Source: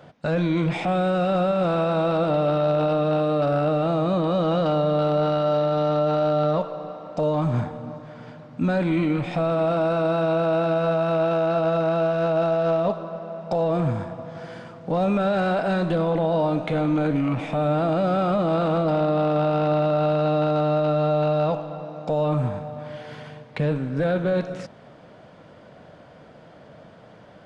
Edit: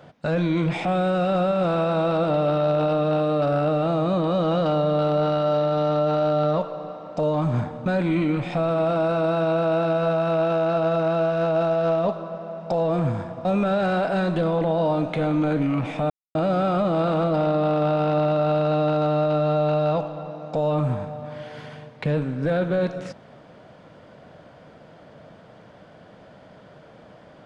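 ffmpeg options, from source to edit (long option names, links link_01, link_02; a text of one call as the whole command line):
ffmpeg -i in.wav -filter_complex "[0:a]asplit=5[link_01][link_02][link_03][link_04][link_05];[link_01]atrim=end=7.862[link_06];[link_02]atrim=start=8.668:end=14.262[link_07];[link_03]atrim=start=14.988:end=17.64,asetpts=PTS-STARTPTS,afade=type=out:start_time=2.648:duration=0.004:curve=hsin[link_08];[link_04]atrim=start=17.64:end=17.89,asetpts=PTS-STARTPTS,volume=0[link_09];[link_05]atrim=start=17.89,asetpts=PTS-STARTPTS,afade=type=in:duration=0.004:curve=hsin[link_10];[link_06][link_07]acrossfade=duration=0.004:curve1=hsin:curve2=hsin[link_11];[link_08][link_09][link_10]concat=n=3:v=0:a=1[link_12];[link_11][link_12]acrossfade=duration=0.004:curve1=hsin:curve2=hsin" out.wav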